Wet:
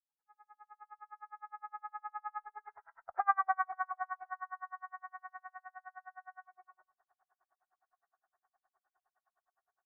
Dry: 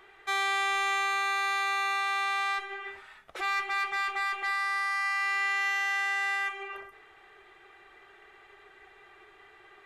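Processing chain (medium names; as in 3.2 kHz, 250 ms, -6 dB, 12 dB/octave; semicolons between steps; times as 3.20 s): fade-in on the opening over 1.80 s; Doppler pass-by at 3.30 s, 22 m/s, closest 5 m; steep low-pass 1.6 kHz 48 dB/octave; resonant low shelf 500 Hz -13 dB, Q 3; logarithmic tremolo 9.7 Hz, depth 39 dB; trim +6 dB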